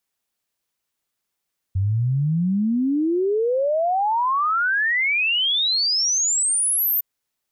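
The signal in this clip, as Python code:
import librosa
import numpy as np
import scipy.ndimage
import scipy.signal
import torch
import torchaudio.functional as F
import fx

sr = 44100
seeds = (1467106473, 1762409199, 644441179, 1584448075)

y = fx.ess(sr, length_s=5.26, from_hz=92.0, to_hz=14000.0, level_db=-17.5)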